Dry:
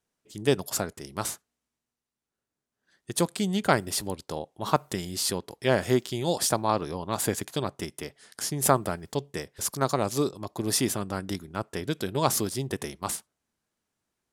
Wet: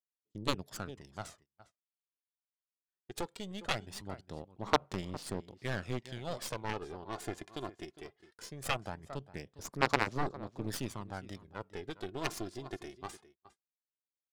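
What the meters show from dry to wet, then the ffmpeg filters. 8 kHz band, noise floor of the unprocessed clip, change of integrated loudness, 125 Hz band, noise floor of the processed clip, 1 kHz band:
−17.5 dB, below −85 dBFS, −10.5 dB, −10.5 dB, below −85 dBFS, −8.5 dB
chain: -filter_complex "[0:a]aphaser=in_gain=1:out_gain=1:delay=2.9:decay=0.56:speed=0.2:type=sinusoidal,asplit=2[link_01][link_02];[link_02]aecho=0:1:407:0.158[link_03];[link_01][link_03]amix=inputs=2:normalize=0,adynamicsmooth=sensitivity=3:basefreq=3800,agate=range=-25dB:threshold=-49dB:ratio=16:detection=peak,aeval=exprs='1.06*(cos(1*acos(clip(val(0)/1.06,-1,1)))-cos(1*PI/2))+0.188*(cos(2*acos(clip(val(0)/1.06,-1,1)))-cos(2*PI/2))+0.133*(cos(6*acos(clip(val(0)/1.06,-1,1)))-cos(6*PI/2))+0.211*(cos(7*acos(clip(val(0)/1.06,-1,1)))-cos(7*PI/2))':channel_layout=same,volume=-5dB"

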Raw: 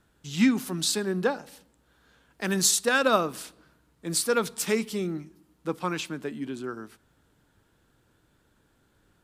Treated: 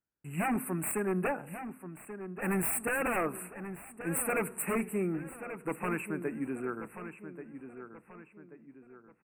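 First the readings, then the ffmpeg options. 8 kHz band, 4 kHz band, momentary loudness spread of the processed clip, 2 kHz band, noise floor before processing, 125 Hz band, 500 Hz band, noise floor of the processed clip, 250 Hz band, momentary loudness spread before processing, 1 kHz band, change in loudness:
−9.5 dB, below −25 dB, 17 LU, −5.0 dB, −67 dBFS, −2.5 dB, −6.0 dB, −62 dBFS, −5.5 dB, 16 LU, −4.5 dB, −7.5 dB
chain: -filter_complex "[0:a]agate=range=-27dB:threshold=-57dB:ratio=16:detection=peak,lowshelf=frequency=94:gain=-6,aeval=exprs='0.0668*(abs(mod(val(0)/0.0668+3,4)-2)-1)':channel_layout=same,asuperstop=centerf=4700:order=20:qfactor=0.89,asplit=2[link_01][link_02];[link_02]adelay=1134,lowpass=frequency=3400:poles=1,volume=-10.5dB,asplit=2[link_03][link_04];[link_04]adelay=1134,lowpass=frequency=3400:poles=1,volume=0.42,asplit=2[link_05][link_06];[link_06]adelay=1134,lowpass=frequency=3400:poles=1,volume=0.42,asplit=2[link_07][link_08];[link_08]adelay=1134,lowpass=frequency=3400:poles=1,volume=0.42[link_09];[link_03][link_05][link_07][link_09]amix=inputs=4:normalize=0[link_10];[link_01][link_10]amix=inputs=2:normalize=0,volume=-1dB"

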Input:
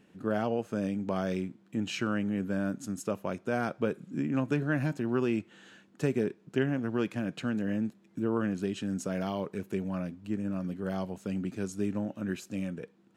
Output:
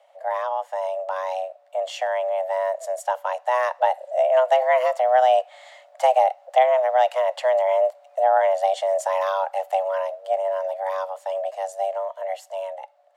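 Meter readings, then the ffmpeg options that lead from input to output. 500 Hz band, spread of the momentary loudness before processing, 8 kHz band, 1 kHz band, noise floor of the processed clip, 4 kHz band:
+14.0 dB, 6 LU, can't be measured, +20.5 dB, −55 dBFS, +7.5 dB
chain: -af "afreqshift=380,dynaudnorm=framelen=460:gausssize=13:maxgain=6.5dB,lowshelf=frequency=480:width_type=q:width=3:gain=-9.5"

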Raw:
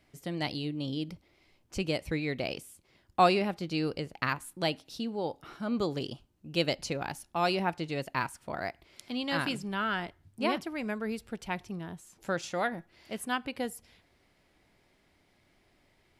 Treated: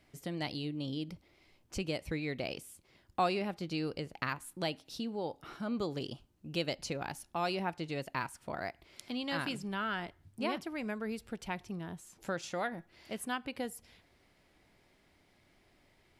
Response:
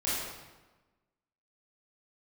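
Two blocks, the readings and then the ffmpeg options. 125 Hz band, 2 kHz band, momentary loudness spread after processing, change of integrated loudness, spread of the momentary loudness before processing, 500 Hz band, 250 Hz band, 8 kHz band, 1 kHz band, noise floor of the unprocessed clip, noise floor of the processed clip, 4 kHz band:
−4.0 dB, −5.0 dB, 9 LU, −5.0 dB, 11 LU, −5.0 dB, −4.0 dB, −2.5 dB, −6.0 dB, −69 dBFS, −69 dBFS, −5.0 dB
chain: -af "acompressor=threshold=-40dB:ratio=1.5"

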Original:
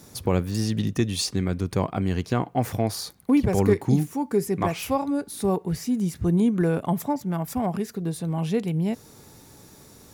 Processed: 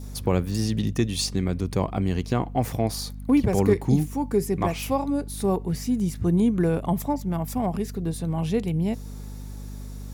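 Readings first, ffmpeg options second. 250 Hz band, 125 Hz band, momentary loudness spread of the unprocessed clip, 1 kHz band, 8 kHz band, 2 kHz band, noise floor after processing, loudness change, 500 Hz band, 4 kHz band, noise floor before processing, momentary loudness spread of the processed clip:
0.0 dB, +0.5 dB, 7 LU, −0.5 dB, 0.0 dB, −1.5 dB, −36 dBFS, 0.0 dB, 0.0 dB, 0.0 dB, −50 dBFS, 9 LU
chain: -af "adynamicequalizer=threshold=0.00316:dfrequency=1500:dqfactor=2.5:tfrequency=1500:tqfactor=2.5:attack=5:release=100:ratio=0.375:range=2.5:mode=cutabove:tftype=bell,aeval=exprs='val(0)+0.0178*(sin(2*PI*50*n/s)+sin(2*PI*2*50*n/s)/2+sin(2*PI*3*50*n/s)/3+sin(2*PI*4*50*n/s)/4+sin(2*PI*5*50*n/s)/5)':channel_layout=same"

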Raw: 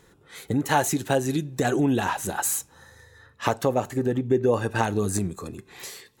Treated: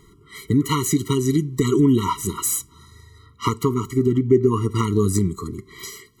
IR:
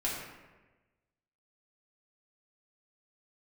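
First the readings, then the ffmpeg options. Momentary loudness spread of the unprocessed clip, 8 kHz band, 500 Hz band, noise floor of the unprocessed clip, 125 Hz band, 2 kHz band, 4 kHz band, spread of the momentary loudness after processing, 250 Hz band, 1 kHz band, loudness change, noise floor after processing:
16 LU, +3.0 dB, +3.0 dB, −58 dBFS, +7.5 dB, −6.5 dB, +4.0 dB, 15 LU, +6.5 dB, −0.5 dB, +4.5 dB, −53 dBFS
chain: -af "lowshelf=frequency=66:gain=6.5,afftfilt=real='re*eq(mod(floor(b*sr/1024/470),2),0)':imag='im*eq(mod(floor(b*sr/1024/470),2),0)':win_size=1024:overlap=0.75,volume=6dB"

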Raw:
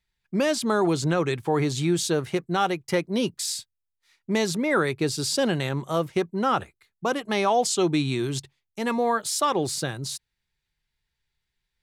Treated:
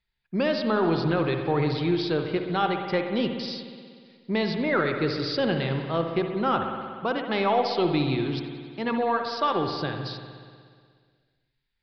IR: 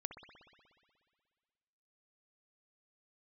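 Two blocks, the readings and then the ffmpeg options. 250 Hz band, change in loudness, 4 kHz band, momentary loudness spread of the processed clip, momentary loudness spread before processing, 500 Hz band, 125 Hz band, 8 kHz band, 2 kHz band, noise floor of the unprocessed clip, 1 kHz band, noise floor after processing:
−0.5 dB, −1.0 dB, −2.0 dB, 9 LU, 8 LU, −0.5 dB, −0.5 dB, below −25 dB, −0.5 dB, −81 dBFS, −0.5 dB, −77 dBFS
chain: -filter_complex "[0:a]aeval=exprs='0.282*(cos(1*acos(clip(val(0)/0.282,-1,1)))-cos(1*PI/2))+0.00224*(cos(4*acos(clip(val(0)/0.282,-1,1)))-cos(4*PI/2))':channel_layout=same[link_01];[1:a]atrim=start_sample=2205[link_02];[link_01][link_02]afir=irnorm=-1:irlink=0,aresample=11025,aresample=44100,volume=2dB"

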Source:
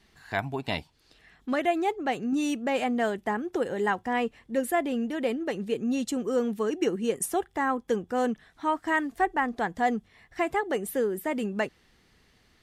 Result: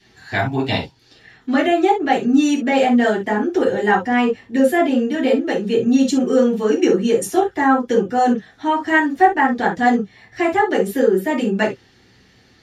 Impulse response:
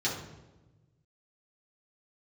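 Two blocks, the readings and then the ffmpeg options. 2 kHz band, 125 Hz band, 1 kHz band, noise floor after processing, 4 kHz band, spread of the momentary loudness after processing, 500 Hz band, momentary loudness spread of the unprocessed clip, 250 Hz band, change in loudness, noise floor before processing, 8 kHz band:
+10.5 dB, +12.0 dB, +11.0 dB, −53 dBFS, +10.5 dB, 6 LU, +11.0 dB, 5 LU, +12.5 dB, +11.0 dB, −64 dBFS, +5.5 dB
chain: -filter_complex "[1:a]atrim=start_sample=2205,atrim=end_sample=3528[link_01];[0:a][link_01]afir=irnorm=-1:irlink=0,volume=2.5dB"

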